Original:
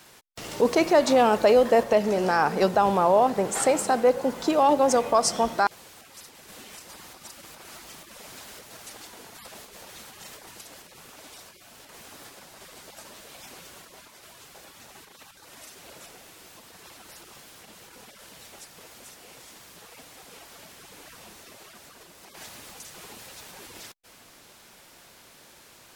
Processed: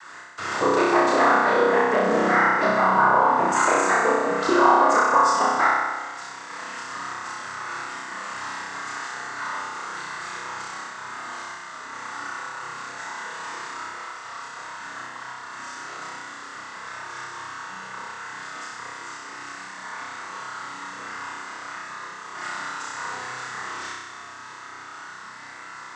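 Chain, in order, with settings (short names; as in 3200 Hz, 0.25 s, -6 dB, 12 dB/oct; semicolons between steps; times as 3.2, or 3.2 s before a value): band shelf 1300 Hz +15.5 dB 1.1 oct; compressor 3:1, threshold -23 dBFS, peak gain reduction 13.5 dB; noise vocoder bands 16; flutter echo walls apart 5.4 m, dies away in 1.4 s; reverb RT60 0.35 s, pre-delay 3 ms, DRR 11 dB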